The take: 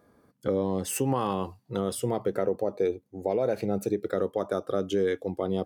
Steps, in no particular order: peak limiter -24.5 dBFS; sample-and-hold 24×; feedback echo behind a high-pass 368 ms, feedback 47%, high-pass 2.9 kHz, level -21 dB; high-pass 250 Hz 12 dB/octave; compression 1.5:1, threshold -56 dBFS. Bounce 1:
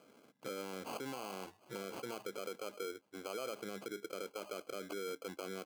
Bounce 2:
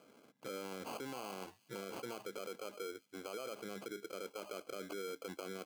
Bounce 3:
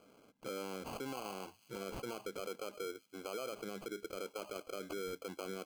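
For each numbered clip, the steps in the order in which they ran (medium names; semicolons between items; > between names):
feedback echo behind a high-pass > sample-and-hold > peak limiter > high-pass > compression; sample-and-hold > high-pass > peak limiter > compression > feedback echo behind a high-pass; high-pass > peak limiter > sample-and-hold > feedback echo behind a high-pass > compression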